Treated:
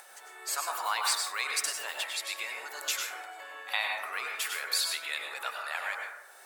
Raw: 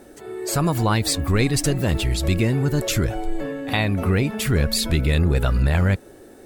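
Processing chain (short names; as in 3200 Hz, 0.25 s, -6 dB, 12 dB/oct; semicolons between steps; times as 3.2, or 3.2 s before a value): HPF 870 Hz 24 dB/oct; upward compressor, threshold -39 dBFS; plate-style reverb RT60 0.87 s, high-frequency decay 0.35×, pre-delay 85 ms, DRR 0.5 dB; gain -6 dB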